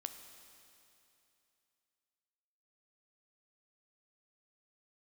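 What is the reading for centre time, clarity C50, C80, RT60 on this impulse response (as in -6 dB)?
37 ms, 8.0 dB, 8.5 dB, 2.8 s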